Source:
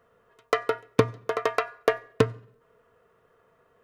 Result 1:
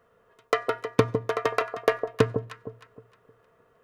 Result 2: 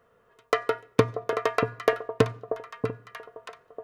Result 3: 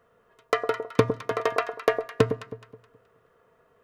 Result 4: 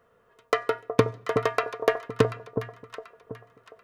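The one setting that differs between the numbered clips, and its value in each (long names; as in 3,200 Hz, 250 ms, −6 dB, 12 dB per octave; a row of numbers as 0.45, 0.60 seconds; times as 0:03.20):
delay that swaps between a low-pass and a high-pass, delay time: 155, 635, 106, 368 milliseconds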